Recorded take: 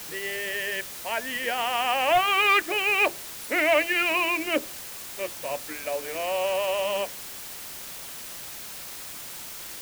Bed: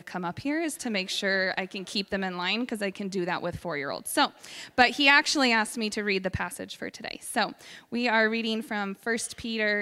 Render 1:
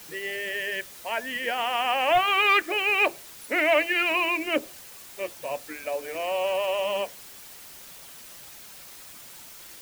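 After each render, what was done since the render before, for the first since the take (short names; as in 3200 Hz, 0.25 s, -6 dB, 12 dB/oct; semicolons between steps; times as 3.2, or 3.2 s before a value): denoiser 7 dB, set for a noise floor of -39 dBFS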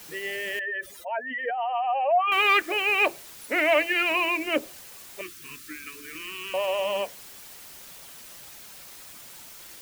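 0.59–2.32 spectral contrast raised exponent 2.6; 5.21–6.54 elliptic band-stop 370–1200 Hz, stop band 50 dB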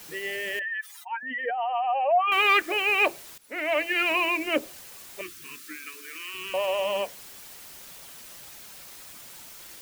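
0.62–1.23 brick-wall FIR high-pass 730 Hz; 3.38–4.04 fade in, from -18.5 dB; 5.44–6.33 HPF 180 Hz -> 610 Hz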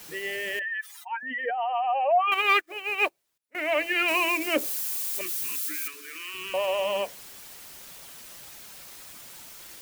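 2.34–3.55 upward expander 2.5:1, over -40 dBFS; 4.08–5.88 switching spikes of -28.5 dBFS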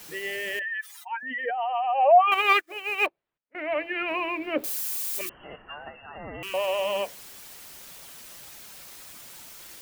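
1.97–2.53 dynamic EQ 690 Hz, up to +6 dB, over -31 dBFS, Q 0.89; 3.06–4.64 air absorption 490 m; 5.29–6.43 inverted band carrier 3100 Hz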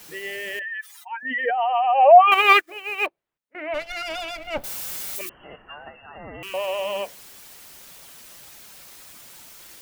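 1.25–2.7 gain +6 dB; 3.74–5.16 minimum comb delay 1.4 ms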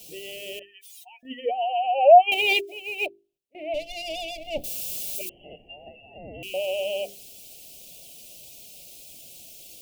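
elliptic band-stop 690–2600 Hz, stop band 50 dB; notches 50/100/150/200/250/300/350/400 Hz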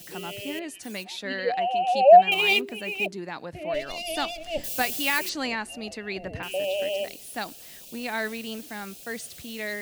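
add bed -6.5 dB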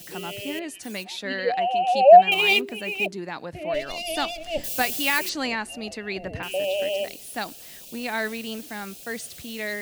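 gain +2 dB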